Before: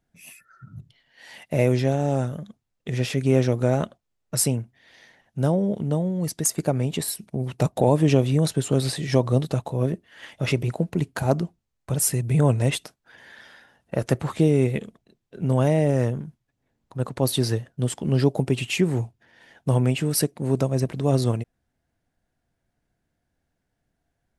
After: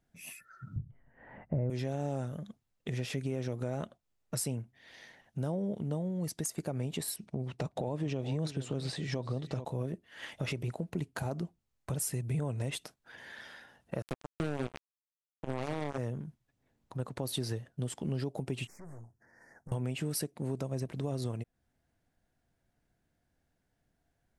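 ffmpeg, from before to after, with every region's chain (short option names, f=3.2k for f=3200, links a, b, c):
-filter_complex "[0:a]asettb=1/sr,asplit=3[a][b][c];[a]atrim=end=0.764[d];[b]atrim=start=0.76:end=1.7,asetpts=PTS-STARTPTS,afade=t=in:d=0.004:c=qsin,afade=t=out:st=0.936:d=0.004:c=qsin,lowpass=f=1.6k:w=0.5412,lowpass=f=1.6k:w=1.3066,aemphasis=mode=reproduction:type=riaa[e];[c]atrim=start=1.696[f];[d][e]acrossfade=d=0.004:c1=hsin:c2=qsin[g];[g][f]acrossfade=d=0.004:c1=qsin:c2=hsin,asettb=1/sr,asplit=3[h][i][j];[h]atrim=end=7.164[k];[i]atrim=start=7.16:end=9.65,asetpts=PTS-STARTPTS,afade=t=in:d=0.004:c=qsin,afade=t=out:st=2.486:d=0.004:c=qsin,lowpass=6.2k,aecho=1:1:429:0.15,atrim=end_sample=109809[l];[j]atrim=start=9.646[m];[k][l]acrossfade=d=0.004:c1=hsin:c2=qsin[n];[n][m]acrossfade=d=0.004:c1=qsin:c2=hsin,asettb=1/sr,asplit=3[o][p][q];[o]atrim=end=14.024[r];[p]atrim=start=14.02:end=15.98,asetpts=PTS-STARTPTS,afade=t=in:d=0.004:c=qsin,afade=t=out:st=1.956:d=0.004:c=qsin,lowpass=f=9.2k:w=0.5412,lowpass=f=9.2k:w=1.3066,bandreject=f=70.03:t=h:w=4,bandreject=f=140.06:t=h:w=4,bandreject=f=210.09:t=h:w=4,bandreject=f=280.12:t=h:w=4,bandreject=f=350.15:t=h:w=4,bandreject=f=420.18:t=h:w=4,bandreject=f=490.21:t=h:w=4,bandreject=f=560.24:t=h:w=4,bandreject=f=630.27:t=h:w=4,bandreject=f=700.3:t=h:w=4,bandreject=f=770.33:t=h:w=4,bandreject=f=840.36:t=h:w=4,bandreject=f=910.39:t=h:w=4,bandreject=f=980.42:t=h:w=4,bandreject=f=1.05045k:t=h:w=4,bandreject=f=1.12048k:t=h:w=4,bandreject=f=1.19051k:t=h:w=4,bandreject=f=1.26054k:t=h:w=4,acrusher=bits=2:mix=0:aa=0.5[s];[q]atrim=start=15.976[t];[r][s]acrossfade=d=0.004:c1=hsin:c2=qsin[u];[u][t]acrossfade=d=0.004:c1=qsin:c2=hsin,asettb=1/sr,asplit=3[v][w][x];[v]atrim=end=18.674[y];[w]atrim=start=18.67:end=19.72,asetpts=PTS-STARTPTS,afade=t=in:d=0.004:c=qsin,afade=t=out:st=1.046:d=0.004:c=qsin,aeval=exprs='(tanh(28.2*val(0)+0.7)-tanh(0.7))/28.2':c=same,acompressor=threshold=-42dB:ratio=16:attack=3.2:release=140:knee=1:detection=peak,asuperstop=centerf=3200:order=8:qfactor=0.97[z];[x]atrim=start=19.716[aa];[y][z]acrossfade=d=0.004:c1=hsin:c2=qsin[ab];[ab][aa]acrossfade=d=0.004:c1=qsin:c2=hsin,alimiter=limit=-13.5dB:level=0:latency=1:release=111,acompressor=threshold=-37dB:ratio=2,volume=-1.5dB"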